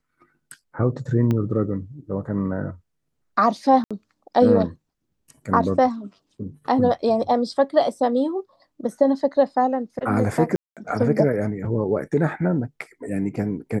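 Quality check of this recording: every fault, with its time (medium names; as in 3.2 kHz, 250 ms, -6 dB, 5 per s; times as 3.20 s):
1.31 s: pop -13 dBFS
3.84–3.91 s: dropout 66 ms
10.56–10.77 s: dropout 207 ms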